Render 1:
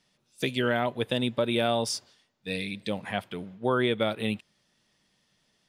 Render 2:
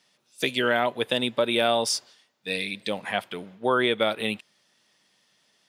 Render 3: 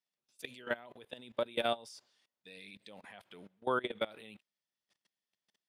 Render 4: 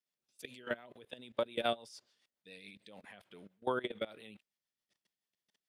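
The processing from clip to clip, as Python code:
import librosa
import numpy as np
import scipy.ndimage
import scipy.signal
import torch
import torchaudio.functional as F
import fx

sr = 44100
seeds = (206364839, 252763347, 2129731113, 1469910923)

y1 = fx.highpass(x, sr, hz=460.0, slope=6)
y1 = y1 * 10.0 ** (5.5 / 20.0)
y2 = fx.level_steps(y1, sr, step_db=22)
y2 = y2 * 10.0 ** (-8.0 / 20.0)
y3 = fx.rotary(y2, sr, hz=7.0)
y3 = y3 * 10.0 ** (1.0 / 20.0)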